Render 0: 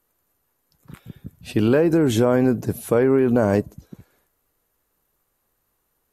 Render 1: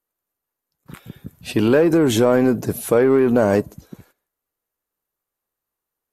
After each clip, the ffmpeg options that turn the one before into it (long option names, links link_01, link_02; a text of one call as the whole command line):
ffmpeg -i in.wav -filter_complex "[0:a]agate=range=-18dB:threshold=-53dB:ratio=16:detection=peak,lowshelf=frequency=190:gain=-7.5,asplit=2[link_01][link_02];[link_02]asoftclip=type=tanh:threshold=-25dB,volume=-5.5dB[link_03];[link_01][link_03]amix=inputs=2:normalize=0,volume=2.5dB" out.wav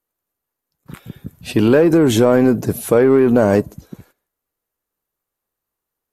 ffmpeg -i in.wav -af "lowshelf=frequency=360:gain=3,volume=1.5dB" out.wav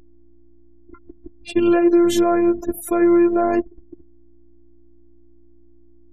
ffmpeg -i in.wav -af "afftfilt=real='re*gte(hypot(re,im),0.0316)':imag='im*gte(hypot(re,im),0.0316)':win_size=1024:overlap=0.75,aeval=exprs='val(0)+0.00794*(sin(2*PI*60*n/s)+sin(2*PI*2*60*n/s)/2+sin(2*PI*3*60*n/s)/3+sin(2*PI*4*60*n/s)/4+sin(2*PI*5*60*n/s)/5)':channel_layout=same,afftfilt=real='hypot(re,im)*cos(PI*b)':imag='0':win_size=512:overlap=0.75" out.wav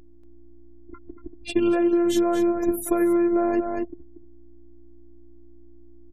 ffmpeg -i in.wav -af "aecho=1:1:235:0.355,acompressor=threshold=-17dB:ratio=10" out.wav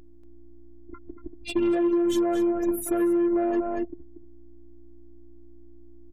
ffmpeg -i in.wav -af "asoftclip=type=tanh:threshold=-17dB" out.wav